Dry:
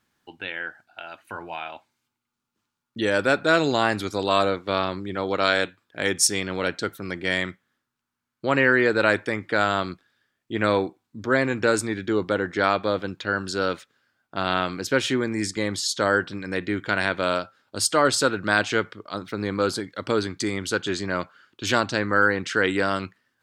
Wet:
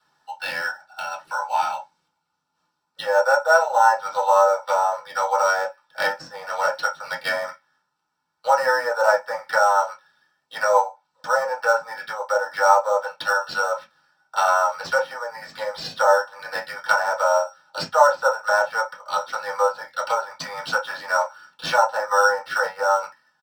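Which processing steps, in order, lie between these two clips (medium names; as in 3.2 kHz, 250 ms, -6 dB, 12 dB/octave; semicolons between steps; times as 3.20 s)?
low-pass that closes with the level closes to 990 Hz, closed at -20 dBFS; steep high-pass 580 Hz 96 dB/octave; comb 2.2 ms, depth 99%; in parallel at -4 dB: sample-rate reducer 7 kHz, jitter 0%; on the sum: reverberation, pre-delay 3 ms, DRR -6 dB; trim -6 dB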